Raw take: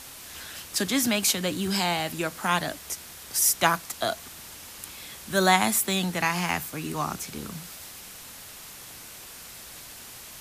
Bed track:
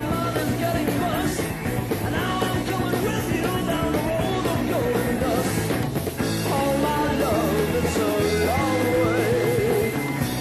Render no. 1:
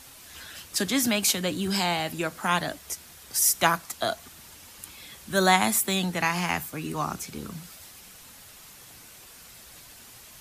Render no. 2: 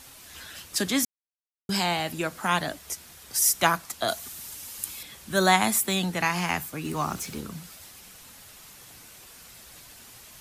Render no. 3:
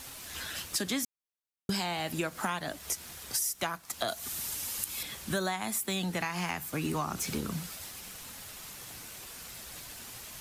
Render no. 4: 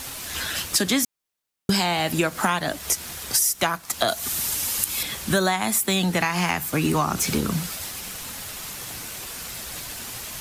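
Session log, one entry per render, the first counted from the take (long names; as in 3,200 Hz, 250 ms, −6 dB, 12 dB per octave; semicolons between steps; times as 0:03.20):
broadband denoise 6 dB, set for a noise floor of −44 dBFS
0:01.05–0:01.69: silence; 0:04.08–0:05.03: high-shelf EQ 4,900 Hz +11.5 dB; 0:06.85–0:07.41: mu-law and A-law mismatch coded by mu
downward compressor 20 to 1, threshold −32 dBFS, peak gain reduction 19 dB; leveller curve on the samples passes 1
level +10.5 dB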